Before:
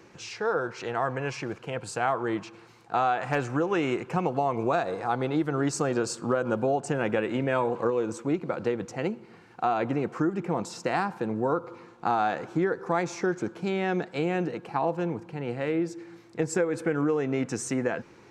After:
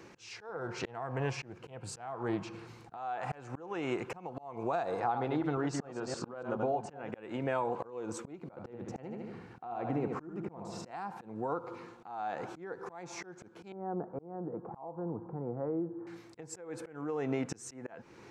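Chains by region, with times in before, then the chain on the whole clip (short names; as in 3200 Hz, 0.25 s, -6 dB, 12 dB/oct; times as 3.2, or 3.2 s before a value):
0.49–2.97 low shelf 270 Hz +10 dB + de-hum 179.1 Hz, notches 35 + Doppler distortion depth 0.16 ms
5–7.11 reverse delay 0.143 s, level -6.5 dB + air absorption 100 m
8.49–10.91 tilt -2 dB/oct + feedback echo 75 ms, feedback 43%, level -7.5 dB
13.72–16.07 steep low-pass 1200 Hz + compressor 1.5:1, threshold -42 dBFS + mismatched tape noise reduction encoder only
whole clip: dynamic EQ 810 Hz, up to +7 dB, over -41 dBFS, Q 1.7; compressor 12:1, threshold -28 dBFS; auto swell 0.369 s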